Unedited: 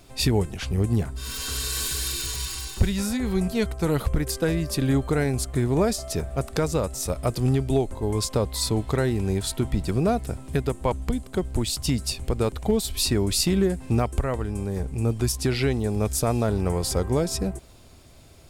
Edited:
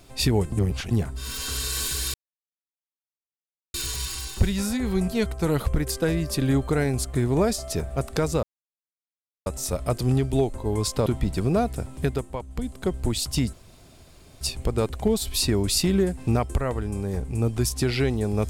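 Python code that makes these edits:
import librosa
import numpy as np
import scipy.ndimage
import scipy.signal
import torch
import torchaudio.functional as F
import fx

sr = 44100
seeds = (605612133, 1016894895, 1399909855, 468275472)

y = fx.edit(x, sr, fx.reverse_span(start_s=0.52, length_s=0.39),
    fx.insert_silence(at_s=2.14, length_s=1.6),
    fx.insert_silence(at_s=6.83, length_s=1.03),
    fx.cut(start_s=8.43, length_s=1.14),
    fx.fade_down_up(start_s=10.6, length_s=0.68, db=-9.5, fade_s=0.3),
    fx.insert_room_tone(at_s=12.04, length_s=0.88), tone=tone)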